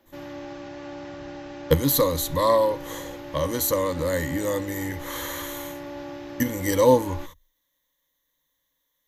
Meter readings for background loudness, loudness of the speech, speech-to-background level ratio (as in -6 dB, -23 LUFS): -38.0 LUFS, -24.0 LUFS, 14.0 dB